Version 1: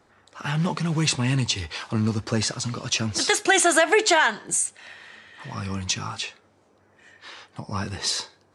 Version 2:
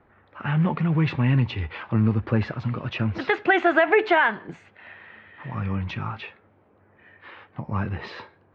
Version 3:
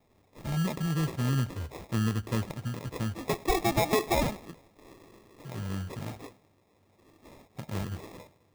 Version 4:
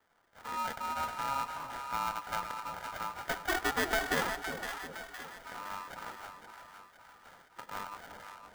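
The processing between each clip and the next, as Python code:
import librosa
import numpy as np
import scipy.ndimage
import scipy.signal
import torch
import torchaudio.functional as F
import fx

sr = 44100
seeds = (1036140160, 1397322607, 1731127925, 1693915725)

y1 = scipy.signal.sosfilt(scipy.signal.cheby2(4, 70, 9700.0, 'lowpass', fs=sr, output='sos'), x)
y1 = fx.low_shelf(y1, sr, hz=150.0, db=6.5)
y2 = fx.echo_feedback(y1, sr, ms=103, feedback_pct=55, wet_db=-23.0)
y2 = fx.sample_hold(y2, sr, seeds[0], rate_hz=1500.0, jitter_pct=0)
y2 = y2 * librosa.db_to_amplitude(-7.5)
y3 = fx.low_shelf(y2, sr, hz=100.0, db=-10.5)
y3 = y3 * np.sin(2.0 * np.pi * 1100.0 * np.arange(len(y3)) / sr)
y3 = fx.echo_split(y3, sr, split_hz=790.0, low_ms=359, high_ms=513, feedback_pct=52, wet_db=-7.5)
y3 = y3 * librosa.db_to_amplitude(-1.5)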